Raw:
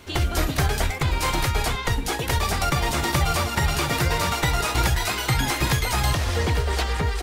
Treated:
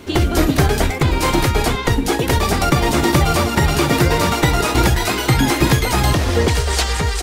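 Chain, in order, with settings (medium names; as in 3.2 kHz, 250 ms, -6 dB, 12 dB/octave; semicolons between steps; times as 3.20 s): peaking EQ 290 Hz +9.5 dB 1.7 oct, from 6.48 s 7.5 kHz; trim +4.5 dB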